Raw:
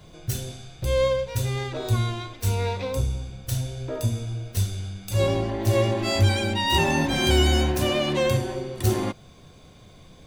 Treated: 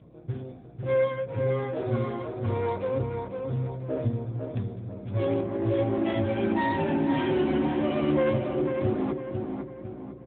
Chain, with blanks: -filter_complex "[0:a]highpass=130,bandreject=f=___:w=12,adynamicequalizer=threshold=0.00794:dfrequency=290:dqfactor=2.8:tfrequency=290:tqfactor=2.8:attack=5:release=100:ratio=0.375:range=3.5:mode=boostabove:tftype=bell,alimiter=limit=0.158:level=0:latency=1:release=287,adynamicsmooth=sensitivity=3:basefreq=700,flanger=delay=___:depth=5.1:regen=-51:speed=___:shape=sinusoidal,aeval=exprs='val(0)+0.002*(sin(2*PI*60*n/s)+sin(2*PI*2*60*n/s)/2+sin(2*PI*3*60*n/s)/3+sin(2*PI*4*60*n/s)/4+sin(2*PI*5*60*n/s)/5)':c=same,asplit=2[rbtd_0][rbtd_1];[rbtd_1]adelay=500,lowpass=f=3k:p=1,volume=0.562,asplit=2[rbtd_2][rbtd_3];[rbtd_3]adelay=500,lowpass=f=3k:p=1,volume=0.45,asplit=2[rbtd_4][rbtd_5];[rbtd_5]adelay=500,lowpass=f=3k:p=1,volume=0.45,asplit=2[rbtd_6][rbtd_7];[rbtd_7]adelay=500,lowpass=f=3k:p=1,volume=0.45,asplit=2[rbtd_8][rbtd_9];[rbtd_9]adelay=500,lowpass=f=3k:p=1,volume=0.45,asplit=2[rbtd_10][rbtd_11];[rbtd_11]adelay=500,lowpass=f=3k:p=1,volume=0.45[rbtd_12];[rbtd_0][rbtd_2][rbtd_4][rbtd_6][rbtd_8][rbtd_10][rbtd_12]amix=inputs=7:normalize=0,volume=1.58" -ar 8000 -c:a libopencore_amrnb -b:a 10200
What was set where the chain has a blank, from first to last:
2.8k, 1.9, 0.36